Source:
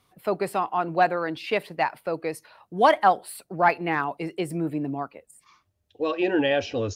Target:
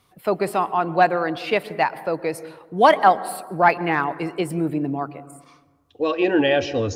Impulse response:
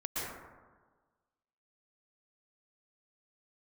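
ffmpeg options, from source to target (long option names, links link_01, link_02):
-filter_complex "[0:a]asplit=2[link_01][link_02];[1:a]atrim=start_sample=2205,lowshelf=frequency=380:gain=8[link_03];[link_02][link_03]afir=irnorm=-1:irlink=0,volume=-22dB[link_04];[link_01][link_04]amix=inputs=2:normalize=0,volume=3.5dB"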